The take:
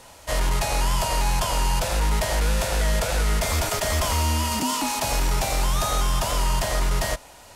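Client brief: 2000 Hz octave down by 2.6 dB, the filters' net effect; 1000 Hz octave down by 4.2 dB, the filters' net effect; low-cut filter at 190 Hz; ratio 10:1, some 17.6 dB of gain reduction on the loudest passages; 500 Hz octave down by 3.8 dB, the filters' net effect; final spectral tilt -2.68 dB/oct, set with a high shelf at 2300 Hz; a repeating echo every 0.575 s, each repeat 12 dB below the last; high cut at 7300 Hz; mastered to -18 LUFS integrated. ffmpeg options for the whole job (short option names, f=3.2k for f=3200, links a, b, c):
-af "highpass=190,lowpass=7.3k,equalizer=f=500:t=o:g=-3.5,equalizer=f=1k:t=o:g=-4,equalizer=f=2k:t=o:g=-6.5,highshelf=f=2.3k:g=8,acompressor=threshold=-40dB:ratio=10,aecho=1:1:575|1150|1725:0.251|0.0628|0.0157,volume=23dB"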